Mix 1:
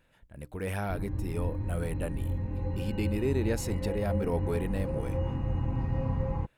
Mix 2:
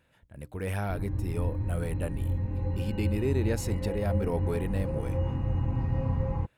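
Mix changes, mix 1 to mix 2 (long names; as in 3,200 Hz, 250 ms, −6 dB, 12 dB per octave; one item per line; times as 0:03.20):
speech: add high-pass filter 47 Hz
master: add parametric band 97 Hz +3.5 dB 0.73 octaves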